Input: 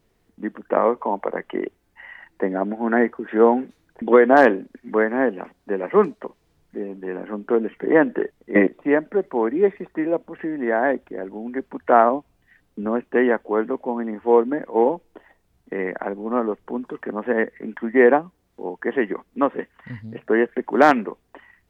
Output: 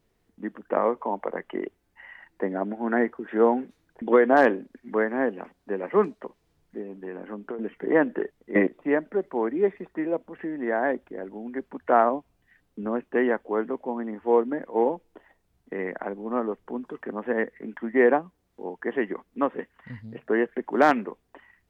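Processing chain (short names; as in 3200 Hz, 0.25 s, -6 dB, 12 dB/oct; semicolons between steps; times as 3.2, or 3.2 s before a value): 6.8–7.59 compressor 12:1, threshold -26 dBFS, peak gain reduction 13.5 dB; gain -5 dB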